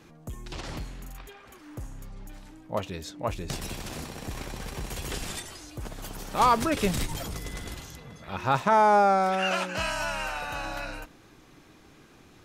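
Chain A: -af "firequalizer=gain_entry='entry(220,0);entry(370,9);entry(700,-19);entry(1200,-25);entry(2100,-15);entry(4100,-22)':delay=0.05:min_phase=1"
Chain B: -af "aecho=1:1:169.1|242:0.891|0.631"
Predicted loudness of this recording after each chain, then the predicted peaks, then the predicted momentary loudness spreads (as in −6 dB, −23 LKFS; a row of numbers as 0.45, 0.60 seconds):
−33.5, −24.5 LKFS; −11.5, −4.5 dBFS; 20, 22 LU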